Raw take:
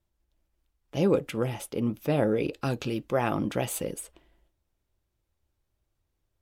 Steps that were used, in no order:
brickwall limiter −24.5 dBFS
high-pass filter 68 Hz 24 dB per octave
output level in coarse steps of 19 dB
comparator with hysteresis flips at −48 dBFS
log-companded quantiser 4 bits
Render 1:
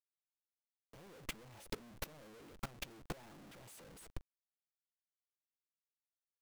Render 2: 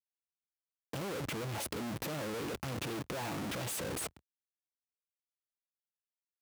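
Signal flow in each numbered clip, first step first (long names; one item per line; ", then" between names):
high-pass filter, then brickwall limiter, then comparator with hysteresis, then log-companded quantiser, then output level in coarse steps
comparator with hysteresis, then log-companded quantiser, then high-pass filter, then brickwall limiter, then output level in coarse steps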